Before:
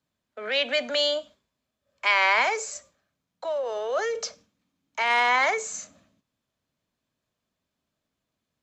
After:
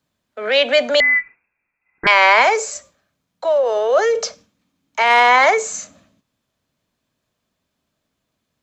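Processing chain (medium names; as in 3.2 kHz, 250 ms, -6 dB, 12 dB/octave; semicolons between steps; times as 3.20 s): dynamic bell 560 Hz, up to +5 dB, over -38 dBFS, Q 0.83; 1.00–2.07 s: frequency inversion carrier 2.6 kHz; trim +7.5 dB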